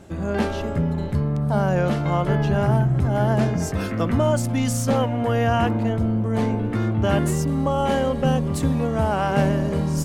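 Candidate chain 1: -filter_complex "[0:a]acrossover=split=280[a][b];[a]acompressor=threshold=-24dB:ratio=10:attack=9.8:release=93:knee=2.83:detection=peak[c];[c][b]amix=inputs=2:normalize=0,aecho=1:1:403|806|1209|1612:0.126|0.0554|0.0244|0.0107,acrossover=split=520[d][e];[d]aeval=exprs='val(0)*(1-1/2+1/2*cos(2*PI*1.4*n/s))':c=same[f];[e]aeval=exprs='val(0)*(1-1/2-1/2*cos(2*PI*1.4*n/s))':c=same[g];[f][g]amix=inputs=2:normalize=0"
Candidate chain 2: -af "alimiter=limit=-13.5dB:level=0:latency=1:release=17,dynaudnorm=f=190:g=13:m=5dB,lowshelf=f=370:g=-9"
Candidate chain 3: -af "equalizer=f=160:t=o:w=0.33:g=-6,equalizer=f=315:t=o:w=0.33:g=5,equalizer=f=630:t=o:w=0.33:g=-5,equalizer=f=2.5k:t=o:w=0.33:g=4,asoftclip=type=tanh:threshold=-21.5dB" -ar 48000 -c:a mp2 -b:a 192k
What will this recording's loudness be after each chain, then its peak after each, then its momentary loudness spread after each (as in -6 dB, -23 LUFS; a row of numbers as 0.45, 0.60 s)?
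-28.5, -23.5, -26.5 LUFS; -14.0, -9.5, -21.0 dBFS; 5, 8, 3 LU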